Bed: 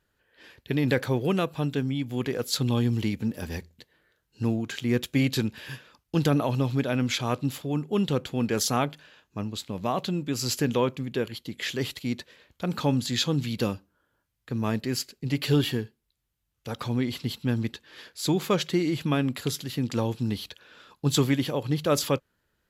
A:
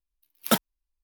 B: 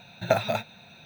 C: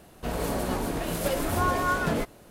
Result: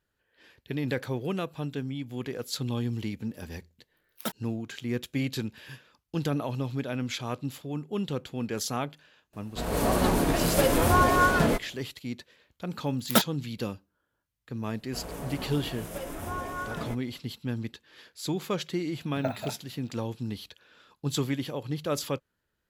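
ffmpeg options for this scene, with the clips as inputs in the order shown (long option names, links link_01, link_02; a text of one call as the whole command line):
ffmpeg -i bed.wav -i cue0.wav -i cue1.wav -i cue2.wav -filter_complex "[1:a]asplit=2[link_01][link_02];[3:a]asplit=2[link_03][link_04];[0:a]volume=-6dB[link_05];[link_03]dynaudnorm=framelen=170:gausssize=5:maxgain=10dB[link_06];[link_04]equalizer=frequency=4300:width_type=o:width=0.26:gain=-8[link_07];[2:a]equalizer=frequency=7000:width=0.43:gain=-9[link_08];[link_01]atrim=end=1.03,asetpts=PTS-STARTPTS,volume=-11.5dB,afade=type=in:duration=0.004:curve=hsin,afade=type=out:start_time=1.026:duration=0.004:curve=hsin,adelay=3740[link_09];[link_06]atrim=end=2.5,asetpts=PTS-STARTPTS,volume=-5dB,afade=type=in:duration=0.004:curve=hsin,afade=type=out:start_time=2.496:duration=0.004:curve=hsin,adelay=9330[link_10];[link_02]atrim=end=1.03,asetpts=PTS-STARTPTS,afade=type=in:duration=0.004:curve=hsin,afade=type=out:start_time=1.026:duration=0.004:curve=hsin,adelay=12640[link_11];[link_07]atrim=end=2.5,asetpts=PTS-STARTPTS,volume=-9.5dB,afade=type=in:duration=0.004:curve=hsin,afade=type=out:start_time=2.496:duration=0.004:curve=hsin,adelay=14700[link_12];[link_08]atrim=end=1.05,asetpts=PTS-STARTPTS,volume=-9dB,afade=type=in:duration=0.004:curve=hsin,afade=type=out:start_time=1.046:duration=0.004:curve=hsin,adelay=18940[link_13];[link_05][link_09][link_10][link_11][link_12][link_13]amix=inputs=6:normalize=0" out.wav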